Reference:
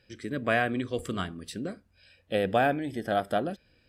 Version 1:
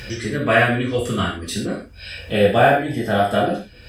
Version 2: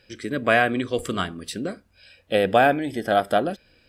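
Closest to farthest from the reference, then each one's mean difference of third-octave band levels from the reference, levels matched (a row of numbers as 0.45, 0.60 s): 2, 1; 1.5, 5.5 dB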